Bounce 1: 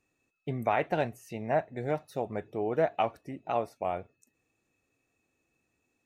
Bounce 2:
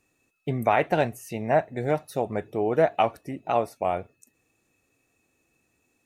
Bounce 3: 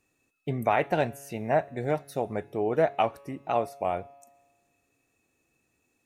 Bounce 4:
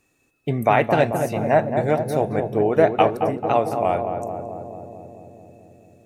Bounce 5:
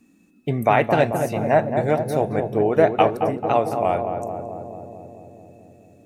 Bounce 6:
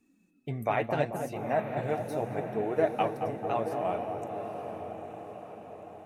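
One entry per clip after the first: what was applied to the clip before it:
parametric band 11,000 Hz +6.5 dB 0.99 octaves; level +6 dB
tuned comb filter 140 Hz, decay 1.4 s, mix 40%; level +1.5 dB
feedback echo with a low-pass in the loop 220 ms, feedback 79%, low-pass 1,000 Hz, level −5 dB; level +7 dB
noise in a band 180–320 Hz −58 dBFS
flanger 0.72 Hz, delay 2.2 ms, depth 8.5 ms, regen +36%; feedback delay with all-pass diffusion 916 ms, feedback 53%, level −10 dB; level −7.5 dB

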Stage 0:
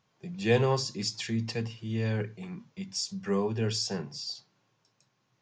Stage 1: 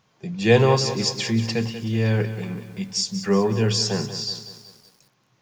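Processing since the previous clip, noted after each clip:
feedback echo at a low word length 188 ms, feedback 55%, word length 9 bits, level −11.5 dB
level +8.5 dB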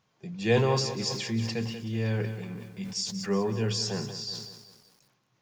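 level that may fall only so fast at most 55 dB per second
level −8 dB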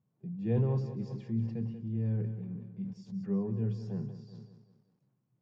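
resonant band-pass 150 Hz, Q 1.2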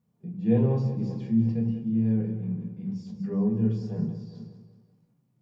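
rectangular room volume 310 cubic metres, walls furnished, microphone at 1.8 metres
level +2.5 dB

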